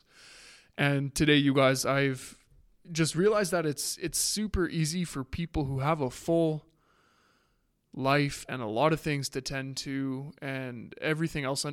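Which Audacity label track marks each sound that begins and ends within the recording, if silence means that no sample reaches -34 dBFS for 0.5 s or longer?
0.780000	2.280000	sound
2.920000	6.580000	sound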